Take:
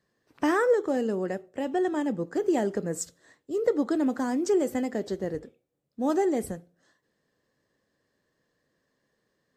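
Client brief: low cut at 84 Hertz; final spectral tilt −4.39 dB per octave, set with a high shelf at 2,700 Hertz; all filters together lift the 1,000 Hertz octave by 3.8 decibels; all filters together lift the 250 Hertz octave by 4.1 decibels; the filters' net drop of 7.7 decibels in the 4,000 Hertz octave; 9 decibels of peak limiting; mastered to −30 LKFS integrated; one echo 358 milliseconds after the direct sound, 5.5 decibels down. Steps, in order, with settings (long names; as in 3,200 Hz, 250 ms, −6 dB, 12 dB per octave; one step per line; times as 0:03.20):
high-pass filter 84 Hz
parametric band 250 Hz +5 dB
parametric band 1,000 Hz +6 dB
high-shelf EQ 2,700 Hz −7 dB
parametric band 4,000 Hz −5 dB
brickwall limiter −19 dBFS
single-tap delay 358 ms −5.5 dB
level −3 dB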